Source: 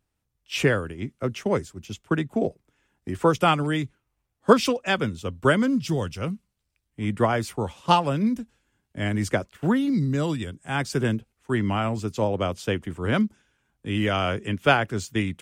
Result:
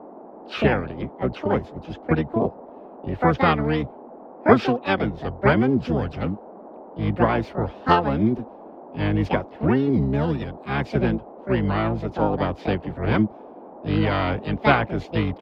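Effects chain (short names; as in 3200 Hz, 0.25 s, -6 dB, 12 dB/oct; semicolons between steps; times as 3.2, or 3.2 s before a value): harmoniser -12 st -7 dB, +7 st -4 dB; band noise 210–860 Hz -42 dBFS; air absorption 300 m; gain +1 dB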